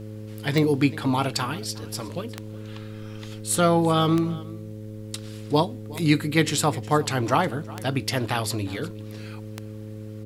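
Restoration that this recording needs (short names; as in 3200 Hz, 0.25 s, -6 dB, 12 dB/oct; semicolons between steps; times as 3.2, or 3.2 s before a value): de-click; de-hum 107.1 Hz, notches 5; inverse comb 0.363 s -20.5 dB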